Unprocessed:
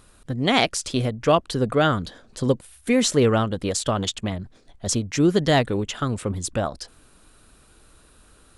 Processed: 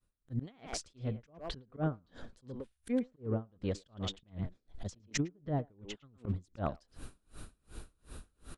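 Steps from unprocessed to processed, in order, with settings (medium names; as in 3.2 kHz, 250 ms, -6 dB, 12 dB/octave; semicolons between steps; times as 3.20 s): fade-in on the opening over 0.99 s; 4.99–6.25 s: gate -28 dBFS, range -32 dB; low-pass that closes with the level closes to 850 Hz, closed at -14.5 dBFS; bass shelf 290 Hz +9.5 dB; slow attack 121 ms; compression 10:1, threshold -30 dBFS, peak gain reduction 20 dB; speakerphone echo 110 ms, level -8 dB; logarithmic tremolo 2.7 Hz, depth 34 dB; trim +2.5 dB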